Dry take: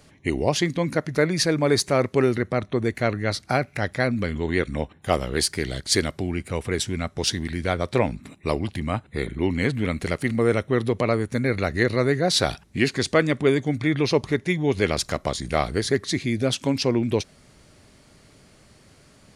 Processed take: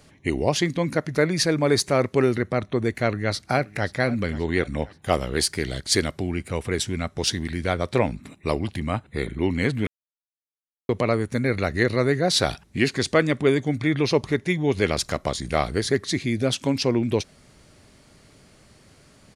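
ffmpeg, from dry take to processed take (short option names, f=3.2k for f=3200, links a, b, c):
-filter_complex "[0:a]asplit=2[a][b];[b]afade=t=in:st=2.99:d=0.01,afade=t=out:st=3.93:d=0.01,aecho=0:1:530|1060|1590|2120:0.133352|0.0600085|0.0270038|0.0121517[c];[a][c]amix=inputs=2:normalize=0,asplit=3[d][e][f];[d]atrim=end=9.87,asetpts=PTS-STARTPTS,afade=t=out:st=9.866:d=0.004:c=hsin[g];[e]atrim=start=9.87:end=10.89,asetpts=PTS-STARTPTS,volume=0[h];[f]atrim=start=10.89,asetpts=PTS-STARTPTS,afade=t=in:d=0.004:c=hsin[i];[g][h][i]concat=n=3:v=0:a=1"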